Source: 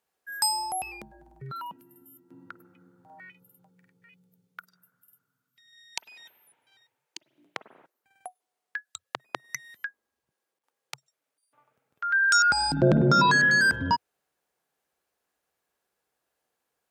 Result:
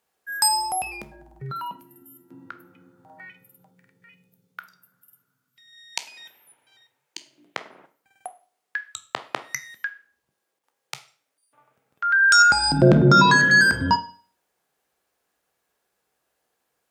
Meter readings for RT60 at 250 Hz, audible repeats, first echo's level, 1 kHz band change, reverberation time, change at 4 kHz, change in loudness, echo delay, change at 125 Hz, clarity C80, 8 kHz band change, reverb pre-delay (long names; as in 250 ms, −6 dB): 0.45 s, no echo audible, no echo audible, +5.5 dB, 0.45 s, +5.5 dB, +5.0 dB, no echo audible, +6.5 dB, 19.5 dB, +5.5 dB, 14 ms